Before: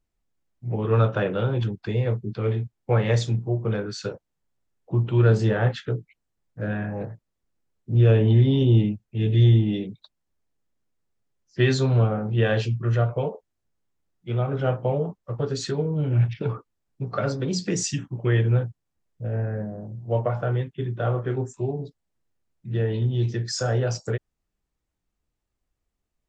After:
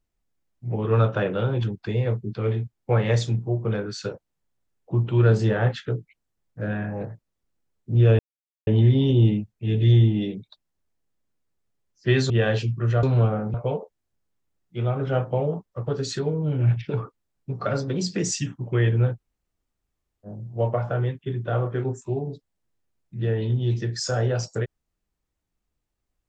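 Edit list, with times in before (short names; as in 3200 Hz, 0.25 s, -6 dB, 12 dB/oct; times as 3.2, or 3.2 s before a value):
8.19 insert silence 0.48 s
11.82–12.33 move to 13.06
18.67–19.78 room tone, crossfade 0.06 s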